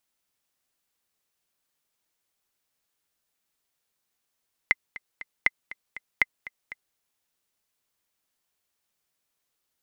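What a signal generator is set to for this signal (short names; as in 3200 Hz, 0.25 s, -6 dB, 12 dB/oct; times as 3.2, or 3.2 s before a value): metronome 239 bpm, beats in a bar 3, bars 3, 2060 Hz, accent 18.5 dB -5.5 dBFS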